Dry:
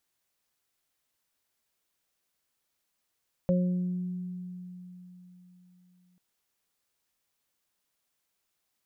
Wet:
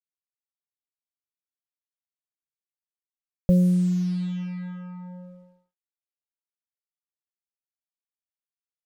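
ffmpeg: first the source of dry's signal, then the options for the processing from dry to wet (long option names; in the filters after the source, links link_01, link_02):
-f lavfi -i "aevalsrc='0.0794*pow(10,-3*t/3.89)*sin(2*PI*180*t)+0.0141*pow(10,-3*t/1.88)*sin(2*PI*360*t)+0.0631*pow(10,-3*t/0.61)*sin(2*PI*540*t)':duration=2.69:sample_rate=44100"
-af "aemphasis=mode=reproduction:type=riaa,acrusher=bits=6:mix=0:aa=0.5"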